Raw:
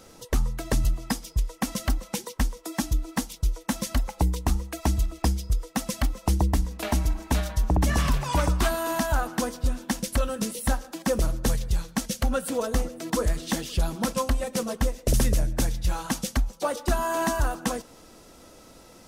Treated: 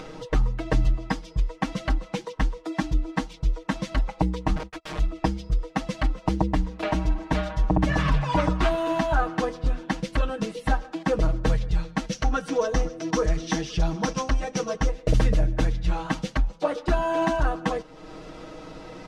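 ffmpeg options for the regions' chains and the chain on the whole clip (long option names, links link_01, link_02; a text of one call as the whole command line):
ffmpeg -i in.wav -filter_complex "[0:a]asettb=1/sr,asplit=3[link_01][link_02][link_03];[link_01]atrim=end=4.564[link_04];[link_02]atrim=start=4.56:end=4.99,asetpts=PTS-STARTPTS,afade=type=in:duration=0.004:curve=qsin,afade=type=out:start_time=0.426:duration=0.004:curve=qsin,agate=range=-33dB:threshold=-37dB:ratio=16:release=100:detection=peak,aeval=exprs='(mod(29.9*val(0)+1,2)-1)/29.9':channel_layout=same[link_05];[link_03]atrim=start=4.986[link_06];[link_04][link_05]acrossfade=duration=0.004:curve1=hsin:curve2=qsin[link_07];[link_07][link_06]acrossfade=duration=0.004:curve1=qsin:curve2=hsin,asettb=1/sr,asplit=3[link_08][link_09][link_10];[link_08]atrim=end=12.124[link_11];[link_09]atrim=start=12.12:end=14.89,asetpts=PTS-STARTPTS,afade=type=in:duration=0.004:curve=qsin,afade=type=out:start_time=2.766:duration=0.004:curve=qsin,equalizer=frequency=5800:width=4.2:gain=13.5,bandreject=frequency=550:width=9.2[link_12];[link_10]atrim=start=14.886[link_13];[link_11][link_12]acrossfade=duration=0.004:curve1=hsin:curve2=qsin[link_14];[link_14][link_13]acrossfade=duration=0.004:curve1=qsin:curve2=hsin,lowpass=3100,aecho=1:1:6.4:0.97,acompressor=mode=upward:threshold=-31dB:ratio=2.5" out.wav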